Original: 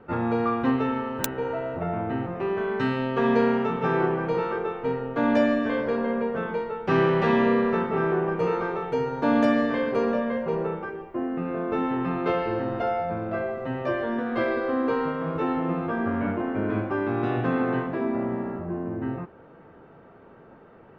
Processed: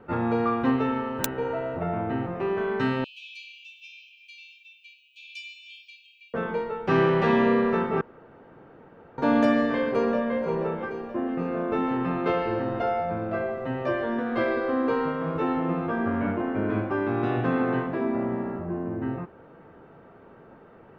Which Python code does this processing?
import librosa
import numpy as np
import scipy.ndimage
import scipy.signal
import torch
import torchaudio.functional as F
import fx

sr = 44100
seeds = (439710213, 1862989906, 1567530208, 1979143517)

y = fx.brickwall_highpass(x, sr, low_hz=2300.0, at=(3.04, 6.34))
y = fx.echo_throw(y, sr, start_s=9.84, length_s=0.54, ms=480, feedback_pct=75, wet_db=-11.5)
y = fx.edit(y, sr, fx.room_tone_fill(start_s=8.01, length_s=1.17), tone=tone)